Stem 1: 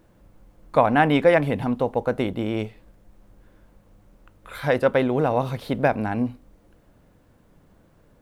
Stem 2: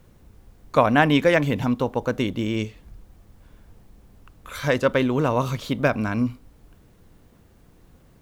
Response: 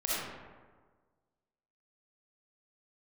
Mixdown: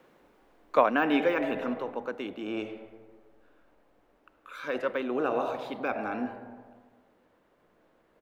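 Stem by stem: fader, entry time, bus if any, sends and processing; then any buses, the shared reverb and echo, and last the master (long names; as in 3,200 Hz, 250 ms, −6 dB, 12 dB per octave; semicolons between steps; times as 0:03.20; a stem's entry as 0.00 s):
−8.5 dB, 0.00 s, send −8.5 dB, level that may rise only so fast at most 100 dB per second
+2.0 dB, 0.4 ms, no send, high-pass filter 150 Hz 24 dB per octave; de-essing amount 70%; automatic ducking −10 dB, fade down 1.80 s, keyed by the first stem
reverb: on, RT60 1.5 s, pre-delay 20 ms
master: three-way crossover with the lows and the highs turned down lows −17 dB, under 310 Hz, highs −13 dB, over 3,400 Hz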